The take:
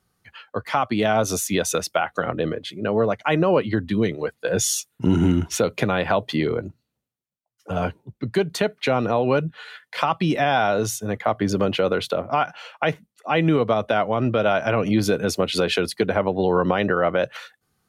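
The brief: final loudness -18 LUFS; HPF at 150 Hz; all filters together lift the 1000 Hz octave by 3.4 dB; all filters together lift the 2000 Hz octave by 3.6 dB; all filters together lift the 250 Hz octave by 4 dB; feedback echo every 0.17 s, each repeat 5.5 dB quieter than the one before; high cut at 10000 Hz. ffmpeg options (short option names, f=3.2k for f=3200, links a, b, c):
-af "highpass=150,lowpass=10k,equalizer=f=250:t=o:g=6,equalizer=f=1k:t=o:g=3.5,equalizer=f=2k:t=o:g=3.5,aecho=1:1:170|340|510|680|850|1020|1190:0.531|0.281|0.149|0.079|0.0419|0.0222|0.0118,volume=0.5dB"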